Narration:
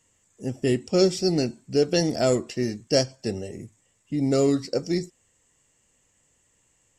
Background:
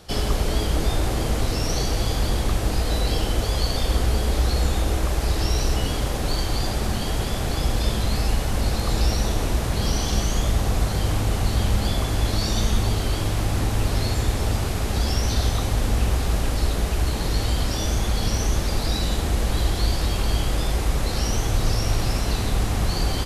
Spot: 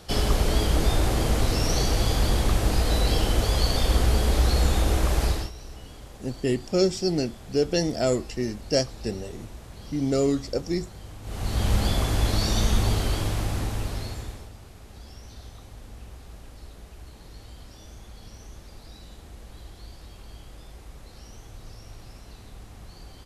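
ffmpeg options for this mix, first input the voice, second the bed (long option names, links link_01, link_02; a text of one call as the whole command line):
ffmpeg -i stem1.wav -i stem2.wav -filter_complex "[0:a]adelay=5800,volume=-2dB[link_01];[1:a]volume=18.5dB,afade=type=out:start_time=5.24:duration=0.27:silence=0.105925,afade=type=in:start_time=11.22:duration=0.52:silence=0.11885,afade=type=out:start_time=12.92:duration=1.58:silence=0.0891251[link_02];[link_01][link_02]amix=inputs=2:normalize=0" out.wav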